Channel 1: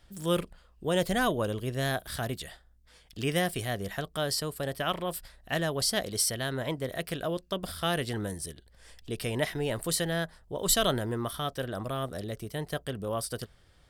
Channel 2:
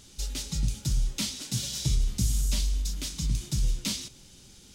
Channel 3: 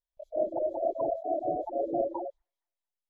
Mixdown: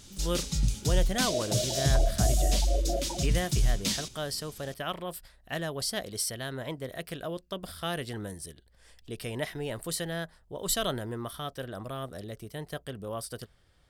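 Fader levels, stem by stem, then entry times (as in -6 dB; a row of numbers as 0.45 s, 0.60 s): -4.0 dB, +1.0 dB, -4.0 dB; 0.00 s, 0.00 s, 0.95 s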